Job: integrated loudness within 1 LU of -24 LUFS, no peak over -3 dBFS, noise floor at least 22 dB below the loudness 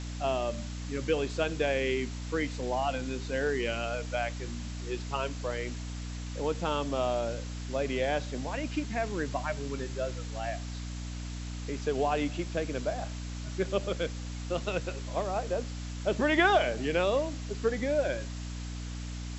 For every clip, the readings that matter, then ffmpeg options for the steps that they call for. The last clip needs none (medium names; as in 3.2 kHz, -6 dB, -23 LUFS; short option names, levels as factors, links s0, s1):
hum 60 Hz; highest harmonic 300 Hz; hum level -35 dBFS; noise floor -38 dBFS; noise floor target -54 dBFS; loudness -32.0 LUFS; peak level -12.0 dBFS; loudness target -24.0 LUFS
-> -af "bandreject=f=60:t=h:w=6,bandreject=f=120:t=h:w=6,bandreject=f=180:t=h:w=6,bandreject=f=240:t=h:w=6,bandreject=f=300:t=h:w=6"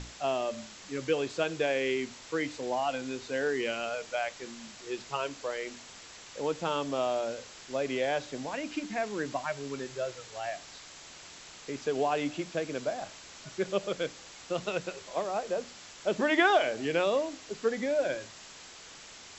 hum not found; noise floor -50 dBFS; noise floor target -55 dBFS
-> -af "afftdn=nr=6:nf=-50"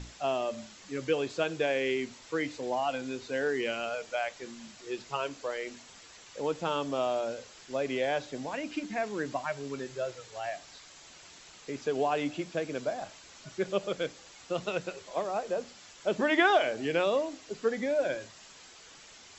noise floor -53 dBFS; noise floor target -55 dBFS
-> -af "afftdn=nr=6:nf=-53"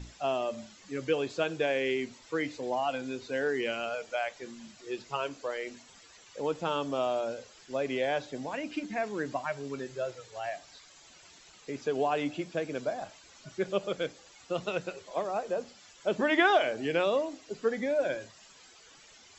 noise floor -56 dBFS; loudness -32.5 LUFS; peak level -12.5 dBFS; loudness target -24.0 LUFS
-> -af "volume=2.66"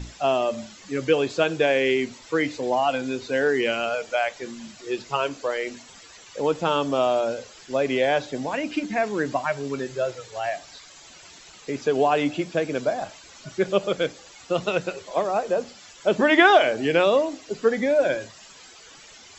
loudness -24.0 LUFS; peak level -4.0 dBFS; noise floor -48 dBFS